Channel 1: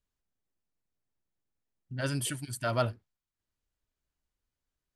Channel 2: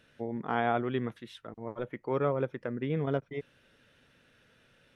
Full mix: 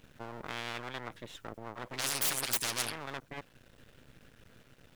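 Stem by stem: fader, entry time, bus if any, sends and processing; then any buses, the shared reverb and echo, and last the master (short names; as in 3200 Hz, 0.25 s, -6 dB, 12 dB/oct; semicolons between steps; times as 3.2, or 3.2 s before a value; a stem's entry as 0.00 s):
+2.5 dB, 0.00 s, no send, dry
-16.5 dB, 0.00 s, no send, low shelf 370 Hz +10.5 dB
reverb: off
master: half-wave rectifier; spectral compressor 10:1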